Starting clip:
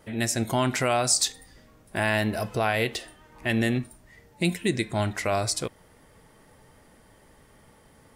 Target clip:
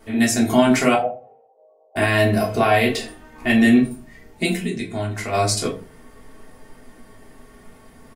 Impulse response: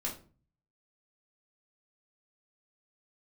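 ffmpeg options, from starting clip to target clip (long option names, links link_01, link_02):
-filter_complex "[0:a]aecho=1:1:4.4:0.37,asettb=1/sr,asplit=3[link_01][link_02][link_03];[link_01]atrim=end=0.944[link_04];[link_02]atrim=start=0.94:end=1.96,asetpts=PTS-STARTPTS,afade=type=in:duration=0.004:curve=qsin,afade=type=out:start_time=1.016:duration=0.004:curve=qsin,asuperpass=centerf=620:order=8:qfactor=1.6[link_05];[link_03]atrim=start=1.956[link_06];[link_04][link_05]acrossfade=duration=0.004:curve1=hsin:curve2=qsin[link_07];[link_07][link_06]acrossfade=duration=0.004:curve1=qsin:curve2=hsin,asplit=3[link_08][link_09][link_10];[link_08]afade=type=out:start_time=4.6:duration=0.02[link_11];[link_09]acompressor=threshold=-32dB:ratio=5,afade=type=in:start_time=4.6:duration=0.02,afade=type=out:start_time=5.32:duration=0.02[link_12];[link_10]afade=type=in:start_time=5.32:duration=0.02[link_13];[link_11][link_12][link_13]amix=inputs=3:normalize=0[link_14];[1:a]atrim=start_sample=2205,asetrate=52920,aresample=44100[link_15];[link_14][link_15]afir=irnorm=-1:irlink=0,volume=6dB"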